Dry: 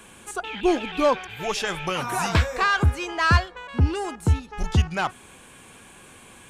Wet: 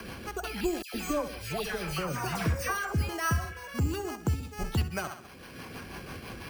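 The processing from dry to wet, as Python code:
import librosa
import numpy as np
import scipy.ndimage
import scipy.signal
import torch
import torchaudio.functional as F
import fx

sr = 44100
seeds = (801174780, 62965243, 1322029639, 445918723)

y = scipy.signal.sosfilt(scipy.signal.butter(2, 41.0, 'highpass', fs=sr, output='sos'), x)
y = fx.notch(y, sr, hz=890.0, q=21.0)
y = fx.echo_feedback(y, sr, ms=65, feedback_pct=42, wet_db=-10.5)
y = fx.rotary(y, sr, hz=6.0)
y = np.repeat(scipy.signal.resample_poly(y, 1, 6), 6)[:len(y)]
y = fx.dispersion(y, sr, late='lows', ms=117.0, hz=1700.0, at=(0.82, 3.09))
y = fx.spec_repair(y, sr, seeds[0], start_s=3.32, length_s=0.39, low_hz=1300.0, high_hz=3600.0, source='both')
y = fx.band_squash(y, sr, depth_pct=70)
y = F.gain(torch.from_numpy(y), -5.5).numpy()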